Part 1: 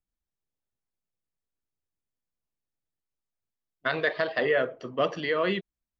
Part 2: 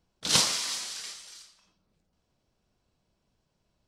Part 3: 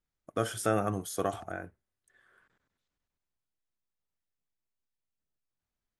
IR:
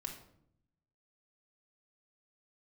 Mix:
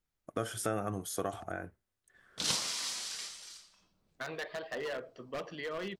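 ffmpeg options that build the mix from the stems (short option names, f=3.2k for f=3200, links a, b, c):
-filter_complex "[0:a]acontrast=88,aeval=exprs='0.224*(abs(mod(val(0)/0.224+3,4)-2)-1)':c=same,adelay=350,volume=-17.5dB[a];[1:a]adelay=2150,volume=-1.5dB[b];[2:a]volume=1.5dB[c];[a][b][c]amix=inputs=3:normalize=0,acompressor=threshold=-35dB:ratio=2"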